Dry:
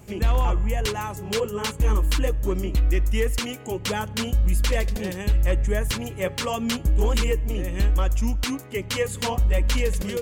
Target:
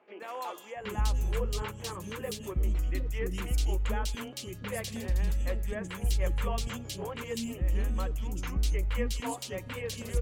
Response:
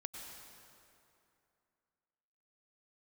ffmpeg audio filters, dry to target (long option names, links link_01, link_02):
-filter_complex "[0:a]acrossover=split=360|2900[link_01][link_02][link_03];[link_03]adelay=200[link_04];[link_01]adelay=760[link_05];[link_05][link_02][link_04]amix=inputs=3:normalize=0,volume=-8dB"